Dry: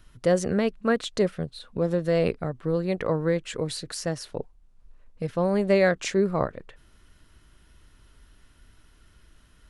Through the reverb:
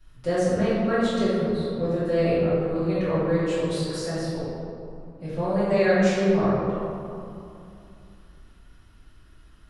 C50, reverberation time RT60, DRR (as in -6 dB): -3.5 dB, 2.7 s, -15.0 dB